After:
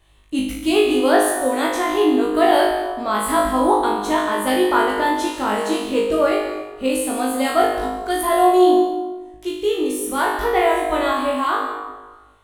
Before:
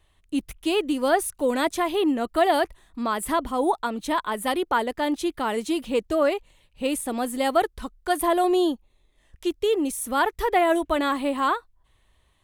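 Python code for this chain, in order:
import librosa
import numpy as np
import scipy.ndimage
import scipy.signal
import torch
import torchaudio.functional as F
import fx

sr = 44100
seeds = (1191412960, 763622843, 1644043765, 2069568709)

p1 = fx.rider(x, sr, range_db=10, speed_s=2.0)
p2 = p1 + fx.room_flutter(p1, sr, wall_m=3.3, rt60_s=0.69, dry=0)
y = fx.rev_plate(p2, sr, seeds[0], rt60_s=1.2, hf_ratio=0.5, predelay_ms=115, drr_db=8.0)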